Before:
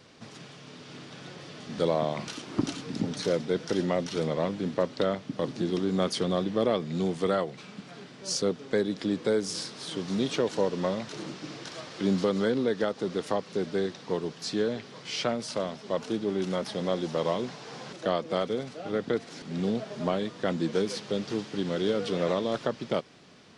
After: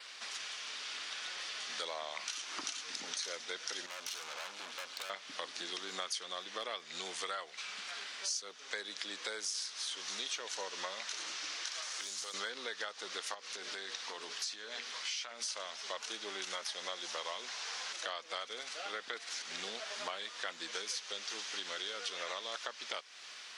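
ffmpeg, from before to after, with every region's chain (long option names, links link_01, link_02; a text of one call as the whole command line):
ffmpeg -i in.wav -filter_complex "[0:a]asettb=1/sr,asplit=3[link_01][link_02][link_03];[link_01]atrim=end=3.864[link_04];[link_02]atrim=start=3.86:end=5.1,asetpts=PTS-STARTPTS,afade=type=in:duration=0.004:curve=qsin,afade=type=out:start_time=1.236:duration=0.004:curve=qsin,aeval=exprs='(tanh(79.4*val(0)+0.7)-tanh(0.7))/79.4':channel_layout=same,bandreject=frequency=1900:width=12[link_05];[link_03]atrim=start=5.096[link_06];[link_04][link_05]acrossfade=duration=0.004:curve1=hsin:curve2=qsin[link_07];[link_07][link_06]acrossfade=duration=0.004:curve1=qsin:curve2=hsin,asettb=1/sr,asplit=3[link_08][link_09][link_10];[link_08]atrim=end=11.824[link_11];[link_09]atrim=start=11.82:end=12.34,asetpts=PTS-STARTPTS,afade=type=in:duration=0.004:curve=qsin,afade=type=out:start_time=0.516:duration=0.004:curve=qsin,bass=frequency=250:gain=-5,treble=frequency=4000:gain=9,acrossover=split=2400|7200[link_12][link_13][link_14];[link_12]acompressor=threshold=-38dB:ratio=4[link_15];[link_13]acompressor=threshold=-53dB:ratio=4[link_16];[link_14]acompressor=threshold=-51dB:ratio=4[link_17];[link_15][link_16][link_17]amix=inputs=3:normalize=0,asoftclip=type=hard:threshold=-31.5dB[link_18];[link_10]atrim=start=12.336[link_19];[link_11][link_18]acrossfade=duration=0.004:curve1=hsin:curve2=qsin[link_20];[link_20][link_19]acrossfade=duration=0.004:curve1=qsin:curve2=hsin,asettb=1/sr,asplit=3[link_21][link_22][link_23];[link_21]atrim=end=13.344[link_24];[link_22]atrim=start=13.34:end=15.46,asetpts=PTS-STARTPTS,afade=type=in:duration=0.004:curve=qsin,afade=type=out:start_time=2.116:duration=0.004:curve=qsin,bandreject=frequency=60:width_type=h:width=6,bandreject=frequency=120:width_type=h:width=6,bandreject=frequency=180:width_type=h:width=6,bandreject=frequency=240:width_type=h:width=6,bandreject=frequency=300:width_type=h:width=6,bandreject=frequency=360:width_type=h:width=6,bandreject=frequency=420:width_type=h:width=6,bandreject=frequency=480:width_type=h:width=6,bandreject=frequency=540:width_type=h:width=6,acompressor=threshold=-33dB:ratio=5:attack=3.2:release=140:knee=1:detection=peak,equalizer=frequency=250:width_type=o:width=0.36:gain=4.5[link_25];[link_23]atrim=start=15.456[link_26];[link_24][link_25]acrossfade=duration=0.004:curve1=hsin:curve2=qsin[link_27];[link_27][link_26]acrossfade=duration=0.004:curve1=qsin:curve2=hsin,highpass=1500,adynamicequalizer=threshold=0.00112:dfrequency=6200:dqfactor=5:tfrequency=6200:tqfactor=5:attack=5:release=100:ratio=0.375:range=3:mode=boostabove:tftype=bell,acompressor=threshold=-49dB:ratio=4,volume=10dB" out.wav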